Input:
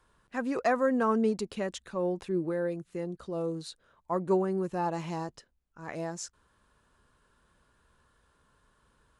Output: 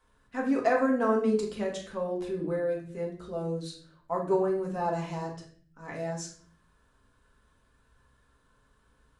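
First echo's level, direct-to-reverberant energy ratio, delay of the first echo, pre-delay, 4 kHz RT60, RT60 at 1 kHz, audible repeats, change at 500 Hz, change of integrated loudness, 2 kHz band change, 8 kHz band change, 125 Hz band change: none, -2.5 dB, none, 4 ms, 0.45 s, 0.40 s, none, +2.0 dB, +1.5 dB, +1.0 dB, -0.5 dB, +0.5 dB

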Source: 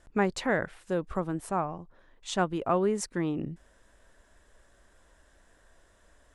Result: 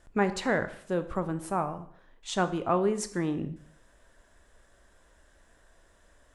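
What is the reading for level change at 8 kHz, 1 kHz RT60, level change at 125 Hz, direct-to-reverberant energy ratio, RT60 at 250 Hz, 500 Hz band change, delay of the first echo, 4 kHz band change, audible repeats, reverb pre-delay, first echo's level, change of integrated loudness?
+0.5 dB, 0.60 s, +0.5 dB, 9.5 dB, 0.60 s, +0.5 dB, none, +0.5 dB, none, 6 ms, none, +0.5 dB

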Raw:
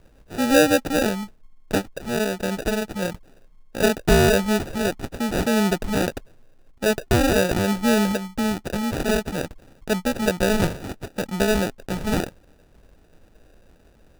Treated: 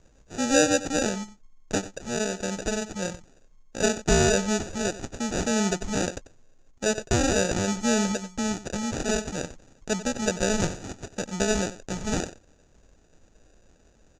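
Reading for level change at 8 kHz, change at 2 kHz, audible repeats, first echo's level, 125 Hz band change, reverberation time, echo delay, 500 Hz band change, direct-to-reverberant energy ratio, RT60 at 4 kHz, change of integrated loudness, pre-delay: +4.0 dB, -4.5 dB, 1, -15.0 dB, -5.0 dB, none, 92 ms, -5.0 dB, none, none, -4.0 dB, none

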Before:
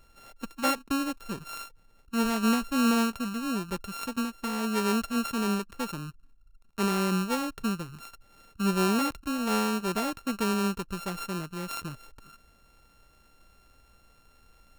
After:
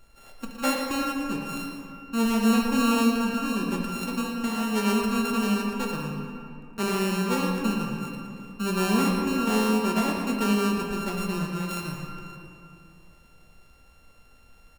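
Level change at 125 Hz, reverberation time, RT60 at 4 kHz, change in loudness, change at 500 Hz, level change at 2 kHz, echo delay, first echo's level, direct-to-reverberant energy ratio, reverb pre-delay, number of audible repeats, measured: +4.0 dB, 2.7 s, 1.4 s, +3.0 dB, +4.0 dB, +3.5 dB, 0.115 s, -10.0 dB, -0.5 dB, 5 ms, 1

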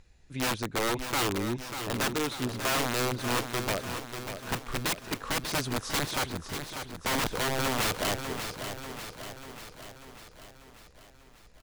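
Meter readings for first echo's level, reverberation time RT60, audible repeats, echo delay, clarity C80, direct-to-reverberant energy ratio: -8.5 dB, none, 6, 0.592 s, none, none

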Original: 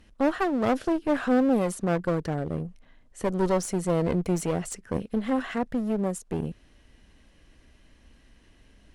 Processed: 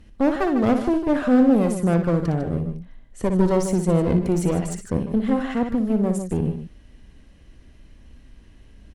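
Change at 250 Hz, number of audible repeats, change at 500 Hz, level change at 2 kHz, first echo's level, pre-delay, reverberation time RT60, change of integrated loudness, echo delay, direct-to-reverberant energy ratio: +7.0 dB, 2, +4.0 dB, +1.5 dB, -8.0 dB, none, none, +5.5 dB, 59 ms, none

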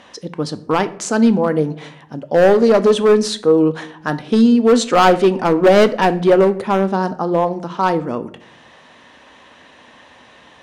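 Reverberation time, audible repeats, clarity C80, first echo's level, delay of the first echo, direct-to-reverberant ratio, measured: 0.65 s, none, 20.0 dB, none, none, 11.0 dB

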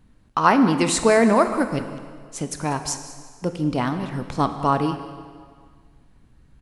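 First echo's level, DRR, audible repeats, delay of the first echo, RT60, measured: -17.0 dB, 7.5 dB, 1, 0.194 s, 1.8 s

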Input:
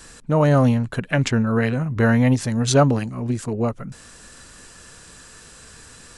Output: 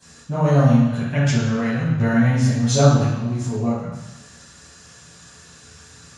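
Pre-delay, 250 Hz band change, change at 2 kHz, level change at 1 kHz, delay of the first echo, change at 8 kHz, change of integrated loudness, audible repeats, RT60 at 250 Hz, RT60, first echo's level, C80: 3 ms, +1.0 dB, -1.5 dB, -1.0 dB, none, +1.0 dB, +1.0 dB, none, 1.0 s, 1.1 s, none, 2.5 dB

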